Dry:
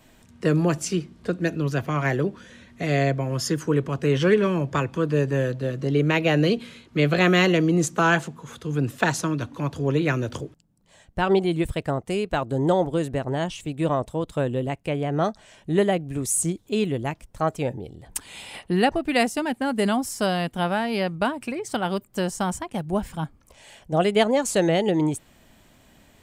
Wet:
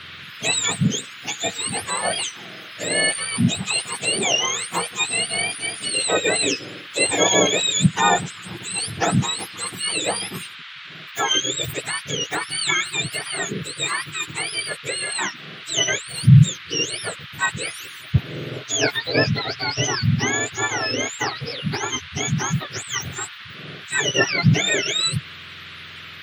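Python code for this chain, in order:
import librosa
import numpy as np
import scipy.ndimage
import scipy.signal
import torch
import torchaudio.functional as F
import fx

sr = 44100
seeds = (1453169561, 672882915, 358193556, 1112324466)

y = fx.octave_mirror(x, sr, pivot_hz=1100.0)
y = fx.dmg_noise_band(y, sr, seeds[0], low_hz=1200.0, high_hz=3800.0, level_db=-43.0)
y = F.gain(torch.from_numpy(y), 4.0).numpy()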